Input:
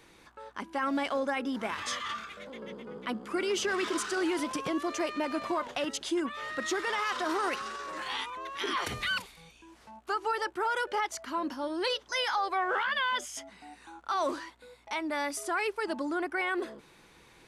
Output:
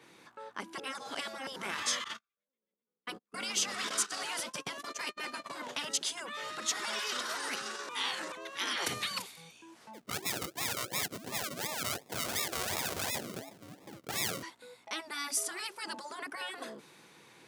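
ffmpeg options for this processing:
-filter_complex "[0:a]asettb=1/sr,asplit=3[s0][s1][s2];[s0]atrim=end=2.044[s3];[s1]atrim=start=2.04:end=5.5,asetpts=PTS-STARTPTS,afade=t=in:d=0.004:c=qsin,afade=t=out:st=3.456:d=0.004:c=qsin,agate=range=0.00282:threshold=0.0158:ratio=16:release=100:detection=peak[s4];[s2]atrim=start=5.496[s5];[s3][s4]acrossfade=d=0.004:c1=hsin:c2=qsin[s6];[s6][s5]acrossfade=d=0.004:c1=qsin:c2=hsin,asettb=1/sr,asplit=3[s7][s8][s9];[s7]atrim=end=6.764[s10];[s8]atrim=start=6.76:end=7.18,asetpts=PTS-STARTPTS,afade=t=in:d=0.004:c=qsin,afade=t=out:st=0.416:d=0.004:c=qsin,aecho=1:1:4.8:0.65,atrim=end_sample=18522[s11];[s9]atrim=start=7.176[s12];[s10][s11]acrossfade=d=0.004:c1=hsin:c2=qsin[s13];[s13][s12]acrossfade=d=0.004:c1=qsin:c2=hsin,asplit=3[s14][s15][s16];[s14]afade=t=out:st=9.93:d=0.02[s17];[s15]acrusher=samples=41:mix=1:aa=0.000001:lfo=1:lforange=24.6:lforate=2.8,afade=t=in:st=9.93:d=0.02,afade=t=out:st=14.42:d=0.02[s18];[s16]afade=t=in:st=14.42:d=0.02[s19];[s17][s18][s19]amix=inputs=3:normalize=0,asplit=5[s20][s21][s22][s23][s24];[s20]atrim=end=0.782[s25];[s21]atrim=start=0.778:end=1.472,asetpts=PTS-STARTPTS,areverse[s26];[s22]atrim=start=1.468:end=7.892[s27];[s23]atrim=start=7.888:end=8.322,asetpts=PTS-STARTPTS,areverse[s28];[s24]atrim=start=8.318[s29];[s25][s26]acrossfade=d=0.004:c1=hsin:c2=hsin[s30];[s30][s27]acrossfade=d=0.004:c1=hsin:c2=hsin[s31];[s31][s28]acrossfade=d=0.004:c1=hsin:c2=hsin[s32];[s32][s29]acrossfade=d=0.004:c1=hsin:c2=hsin,highpass=f=120:w=0.5412,highpass=f=120:w=1.3066,afftfilt=real='re*lt(hypot(re,im),0.0891)':imag='im*lt(hypot(re,im),0.0891)':win_size=1024:overlap=0.75,adynamicequalizer=threshold=0.00282:dfrequency=3900:dqfactor=0.7:tfrequency=3900:tqfactor=0.7:attack=5:release=100:ratio=0.375:range=3.5:mode=boostabove:tftype=highshelf"

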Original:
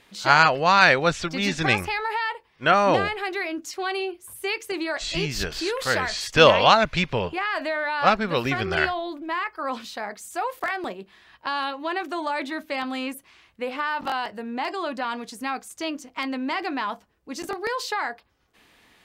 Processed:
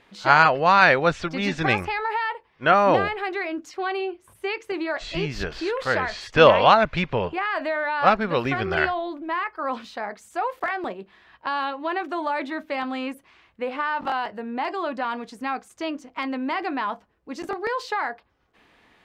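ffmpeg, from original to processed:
-filter_complex "[0:a]asettb=1/sr,asplit=3[s0][s1][s2];[s0]atrim=end=3.694[s3];[s1]atrim=start=3.69:end=7.23,asetpts=PTS-STARTPTS,afade=t=in:d=0.004:c=qsin,afade=t=out:st=3.536:d=0.004:c=qsin,highshelf=f=7400:g=-7[s4];[s2]atrim=start=7.226[s5];[s3][s4]acrossfade=d=0.004:c1=hsin:c2=qsin[s6];[s6][s5]acrossfade=d=0.004:c1=qsin:c2=hsin,lowpass=f=1600:p=1,lowshelf=f=410:g=-4,volume=1.5"

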